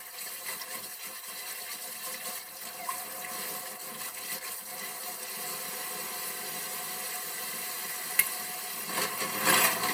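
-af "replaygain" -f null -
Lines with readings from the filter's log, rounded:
track_gain = +14.4 dB
track_peak = 0.354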